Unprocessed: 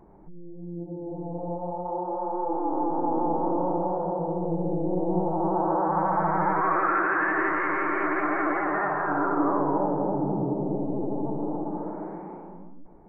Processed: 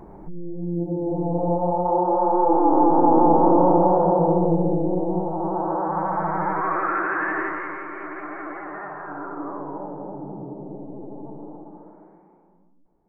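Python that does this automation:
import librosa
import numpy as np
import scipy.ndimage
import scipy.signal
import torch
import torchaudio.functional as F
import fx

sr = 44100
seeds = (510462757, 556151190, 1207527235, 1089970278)

y = fx.gain(x, sr, db=fx.line((4.33, 10.0), (5.27, 0.0), (7.35, 0.0), (7.87, -8.0), (11.37, -8.0), (12.31, -16.0)))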